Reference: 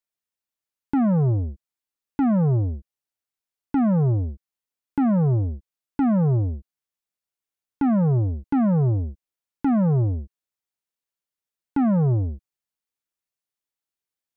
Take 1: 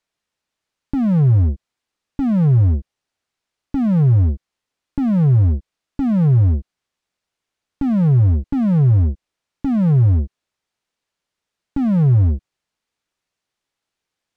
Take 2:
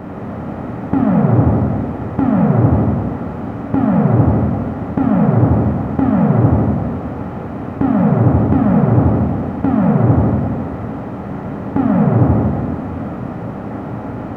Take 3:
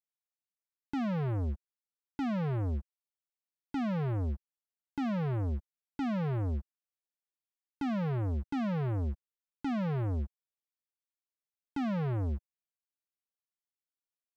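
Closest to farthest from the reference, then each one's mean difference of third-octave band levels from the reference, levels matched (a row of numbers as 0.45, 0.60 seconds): 1, 3, 2; 4.0, 7.5, 12.5 decibels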